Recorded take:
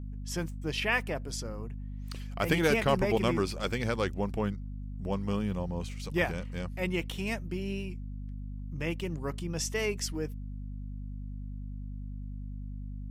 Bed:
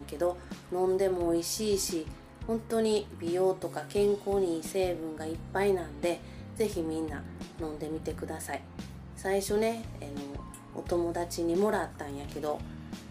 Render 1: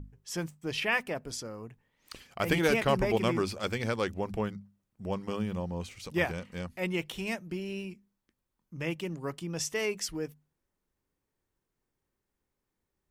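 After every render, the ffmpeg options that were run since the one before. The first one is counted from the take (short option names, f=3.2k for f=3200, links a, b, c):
-af "bandreject=f=50:t=h:w=6,bandreject=f=100:t=h:w=6,bandreject=f=150:t=h:w=6,bandreject=f=200:t=h:w=6,bandreject=f=250:t=h:w=6"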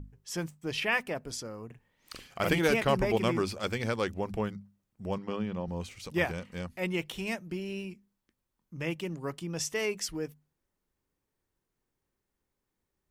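-filter_complex "[0:a]asettb=1/sr,asplit=3[a][b][c];[a]atrim=end=1.664[d];[b]atrim=start=1.66:end=2.49,asetpts=PTS-STARTPTS,afade=t=in:d=0.004:c=qsin,afade=t=out:st=0.826:d=0.004:c=qsin,asplit=2[e][f];[f]adelay=43,volume=-3.5dB[g];[e][g]amix=inputs=2:normalize=0,atrim=end_sample=36603[h];[c]atrim=start=2.486[i];[d][h]acrossfade=d=0.004:c1=hsin:c2=qsin[j];[j][i]acrossfade=d=0.004:c1=qsin:c2=hsin,asettb=1/sr,asplit=3[k][l][m];[k]atrim=end=5.184[n];[l]atrim=start=5.18:end=5.68,asetpts=PTS-STARTPTS,afade=t=in:d=0.004:c=qsin,afade=t=out:st=0.496:d=0.004:c=qsin,highpass=120,lowpass=4k[o];[m]atrim=start=5.676[p];[n][o]acrossfade=d=0.004:c1=hsin:c2=qsin[q];[q][p]acrossfade=d=0.004:c1=qsin:c2=hsin"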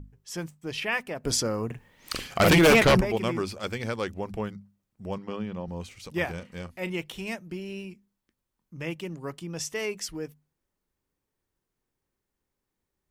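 -filter_complex "[0:a]asettb=1/sr,asplit=3[a][b][c];[a]atrim=end=1.244[d];[b]atrim=start=1.24:end=3.01,asetpts=PTS-STARTPTS,afade=t=in:d=0.004:c=qsin,afade=t=out:st=1.766:d=0.004:c=qsin,aeval=exprs='0.224*sin(PI/2*2.82*val(0)/0.224)':c=same[e];[c]atrim=start=3.006[f];[d][e]acrossfade=d=0.004:c1=hsin:c2=qsin[g];[g][f]acrossfade=d=0.004:c1=qsin:c2=hsin,asettb=1/sr,asplit=3[h][i][j];[h]atrim=end=6.244[k];[i]atrim=start=6.24:end=6.9,asetpts=PTS-STARTPTS,afade=t=in:d=0.004:c=qsin,afade=t=out:st=0.656:d=0.004:c=qsin,asplit=2[l][m];[m]adelay=36,volume=-13.5dB[n];[l][n]amix=inputs=2:normalize=0,atrim=end_sample=29106[o];[j]atrim=start=6.896[p];[k][o]acrossfade=d=0.004:c1=hsin:c2=qsin[q];[q][p]acrossfade=d=0.004:c1=qsin:c2=hsin"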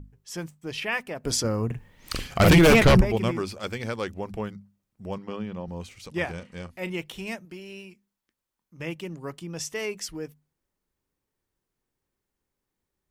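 -filter_complex "[0:a]asettb=1/sr,asplit=3[a][b][c];[a]atrim=end=1.444[d];[b]atrim=start=1.44:end=3.31,asetpts=PTS-STARTPTS,afade=t=in:d=0.004:c=qsin,afade=t=out:st=1.866:d=0.004:c=qsin,lowshelf=f=140:g=12[e];[c]atrim=start=3.306[f];[d][e]acrossfade=d=0.004:c1=hsin:c2=qsin[g];[g][f]acrossfade=d=0.004:c1=qsin:c2=hsin,asettb=1/sr,asplit=3[h][i][j];[h]atrim=end=6.064[k];[i]atrim=start=6.06:end=6.73,asetpts=PTS-STARTPTS,afade=t=in:d=0.004:c=qsin,afade=t=out:st=0.666:d=0.004:c=qsin,lowpass=f=11k:w=0.5412,lowpass=f=11k:w=1.3066[l];[j]atrim=start=6.726[m];[k][l]acrossfade=d=0.004:c1=hsin:c2=qsin[n];[n][m]acrossfade=d=0.004:c1=qsin:c2=hsin,asettb=1/sr,asplit=3[o][p][q];[o]atrim=end=7.454[r];[p]atrim=start=7.45:end=8.8,asetpts=PTS-STARTPTS,afade=t=in:d=0.004:c=qsin,afade=t=out:st=1.346:d=0.004:c=qsin,lowshelf=f=340:g=-9.5[s];[q]atrim=start=8.796[t];[r][s]acrossfade=d=0.004:c1=hsin:c2=qsin[u];[u][t]acrossfade=d=0.004:c1=qsin:c2=hsin"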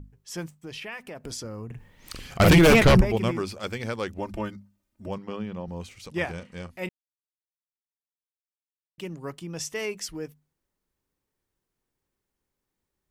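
-filter_complex "[0:a]asettb=1/sr,asplit=3[a][b][c];[a]atrim=end=0.564[d];[b]atrim=start=0.56:end=2.4,asetpts=PTS-STARTPTS,afade=t=in:d=0.004:c=qsin,afade=t=out:st=1.836:d=0.004:c=qsin,acompressor=threshold=-36dB:ratio=3:attack=3.2:release=140:knee=1:detection=peak[e];[c]atrim=start=2.396[f];[d][e]acrossfade=d=0.004:c1=hsin:c2=qsin[g];[g][f]acrossfade=d=0.004:c1=qsin:c2=hsin,asettb=1/sr,asplit=3[h][i][j];[h]atrim=end=4.184[k];[i]atrim=start=4.18:end=5.08,asetpts=PTS-STARTPTS,afade=t=in:d=0.004:c=qsin,afade=t=out:st=0.896:d=0.004:c=qsin,aecho=1:1:3.3:0.87,atrim=end_sample=39690[l];[j]atrim=start=5.076[m];[k][l]acrossfade=d=0.004:c1=hsin:c2=qsin[n];[n][m]acrossfade=d=0.004:c1=qsin:c2=hsin,asplit=3[o][p][q];[o]atrim=end=6.89,asetpts=PTS-STARTPTS,afade=t=out:st=6.886:d=0.004:c=hsin[r];[p]atrim=start=6.89:end=8.98,asetpts=PTS-STARTPTS,volume=0[s];[q]atrim=start=8.98,asetpts=PTS-STARTPTS,afade=t=in:d=0.004:c=hsin[t];[r][s][t]concat=n=3:v=0:a=1"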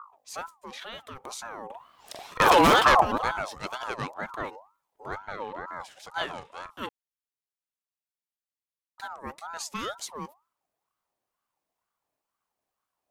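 -af "aeval=exprs='val(0)*sin(2*PI*910*n/s+910*0.3/2.1*sin(2*PI*2.1*n/s))':c=same"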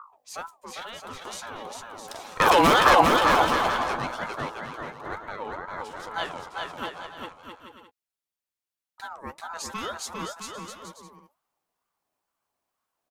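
-filter_complex "[0:a]asplit=2[a][b];[b]adelay=12,volume=-12dB[c];[a][c]amix=inputs=2:normalize=0,aecho=1:1:400|660|829|938.8|1010:0.631|0.398|0.251|0.158|0.1"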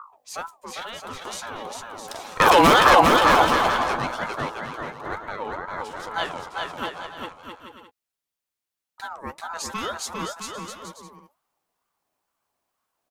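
-af "volume=3.5dB,alimiter=limit=-3dB:level=0:latency=1"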